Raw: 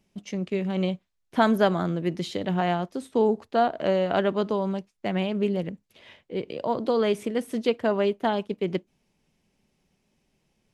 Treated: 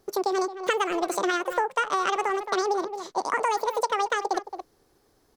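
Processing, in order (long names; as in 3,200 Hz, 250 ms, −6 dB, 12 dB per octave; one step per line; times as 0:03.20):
wrong playback speed 7.5 ips tape played at 15 ips
far-end echo of a speakerphone 220 ms, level −14 dB
downward compressor, threshold −28 dBFS, peak gain reduction 12 dB
level +6 dB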